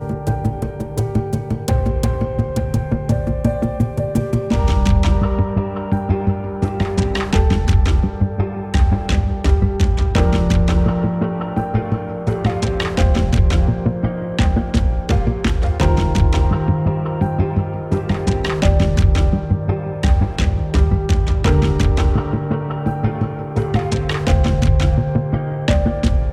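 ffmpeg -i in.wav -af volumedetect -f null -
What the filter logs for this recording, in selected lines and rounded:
mean_volume: -16.3 dB
max_volume: -2.4 dB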